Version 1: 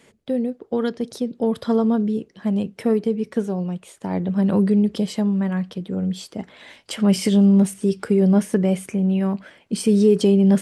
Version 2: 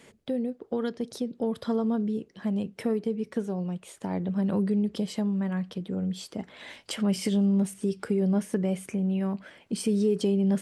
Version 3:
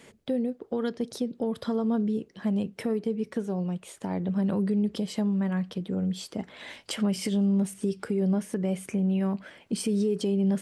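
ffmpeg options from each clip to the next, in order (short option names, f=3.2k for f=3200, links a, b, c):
-af "acompressor=threshold=-38dB:ratio=1.5"
-af "alimiter=limit=-20dB:level=0:latency=1:release=183,volume=1.5dB"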